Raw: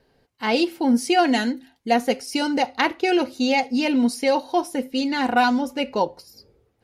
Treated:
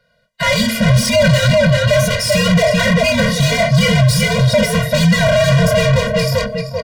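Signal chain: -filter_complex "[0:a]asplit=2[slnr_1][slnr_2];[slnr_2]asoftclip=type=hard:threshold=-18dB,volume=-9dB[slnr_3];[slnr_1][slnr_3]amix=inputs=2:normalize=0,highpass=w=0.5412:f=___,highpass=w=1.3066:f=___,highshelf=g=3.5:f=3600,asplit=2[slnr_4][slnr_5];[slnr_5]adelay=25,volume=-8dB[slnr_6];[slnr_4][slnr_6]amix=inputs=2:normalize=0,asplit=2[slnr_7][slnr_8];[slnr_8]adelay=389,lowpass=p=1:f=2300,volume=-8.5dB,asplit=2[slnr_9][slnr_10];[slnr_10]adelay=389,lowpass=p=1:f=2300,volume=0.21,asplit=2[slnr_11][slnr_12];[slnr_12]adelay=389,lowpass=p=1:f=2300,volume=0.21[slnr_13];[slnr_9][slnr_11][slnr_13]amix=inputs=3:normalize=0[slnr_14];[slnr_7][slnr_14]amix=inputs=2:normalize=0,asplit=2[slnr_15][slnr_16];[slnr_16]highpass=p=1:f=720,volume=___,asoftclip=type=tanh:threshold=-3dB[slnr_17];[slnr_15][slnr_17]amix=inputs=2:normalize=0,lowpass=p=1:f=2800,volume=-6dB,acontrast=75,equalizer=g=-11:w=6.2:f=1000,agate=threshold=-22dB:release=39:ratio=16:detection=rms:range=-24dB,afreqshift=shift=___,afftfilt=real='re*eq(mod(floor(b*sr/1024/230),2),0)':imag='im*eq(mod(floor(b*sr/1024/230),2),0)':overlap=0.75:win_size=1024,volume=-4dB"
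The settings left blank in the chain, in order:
57, 57, 36dB, -110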